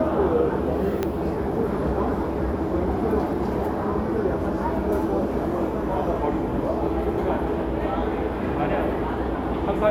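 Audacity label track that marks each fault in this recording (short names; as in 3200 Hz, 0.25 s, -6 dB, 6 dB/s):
1.030000	1.030000	pop -11 dBFS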